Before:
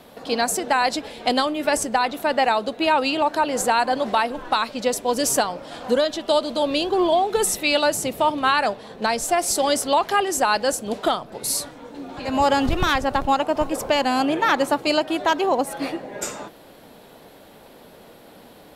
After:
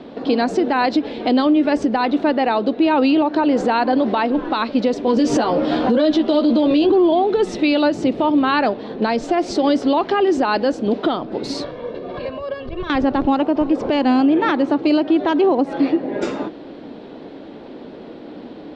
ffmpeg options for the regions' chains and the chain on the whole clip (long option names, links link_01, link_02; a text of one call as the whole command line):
ffmpeg -i in.wav -filter_complex "[0:a]asettb=1/sr,asplit=3[link_01][link_02][link_03];[link_01]atrim=end=5.064[link_04];[link_02]atrim=start=5.06:end=6.92,asetpts=PTS-STARTPTS,afade=type=in:duration=0.004:curve=qsin,afade=type=out:start_time=1.856:duration=0.004:curve=qsin,acontrast=67,asplit=2[link_05][link_06];[link_06]adelay=13,volume=-3dB[link_07];[link_05][link_07]amix=inputs=2:normalize=0,atrim=end_sample=82026[link_08];[link_03]atrim=start=6.916[link_09];[link_04][link_08]acrossfade=duration=0.004:curve1=hsin:curve2=qsin[link_10];[link_10][link_09]acrossfade=duration=0.004:curve1=qsin:curve2=hsin,asettb=1/sr,asplit=3[link_11][link_12][link_13];[link_11]atrim=end=11.644[link_14];[link_12]atrim=start=11.64:end=12.9,asetpts=PTS-STARTPTS,afade=type=in:duration=0.004:curve=qsin,afade=type=out:start_time=1.256:duration=0.004:curve=qsin,lowpass=5100,acompressor=threshold=-33dB:ratio=10:attack=3.2:release=140:knee=1:detection=peak,aecho=1:1:1.8:0.91,atrim=end_sample=55566[link_15];[link_13]atrim=start=12.896[link_16];[link_14][link_15]acrossfade=duration=0.004:curve1=hsin:curve2=qsin[link_17];[link_17][link_16]acrossfade=duration=0.004:curve1=qsin:curve2=hsin,lowpass=frequency=4500:width=0.5412,lowpass=frequency=4500:width=1.3066,equalizer=frequency=300:width=1.1:gain=14.5,alimiter=limit=-11.5dB:level=0:latency=1:release=142,volume=3dB" out.wav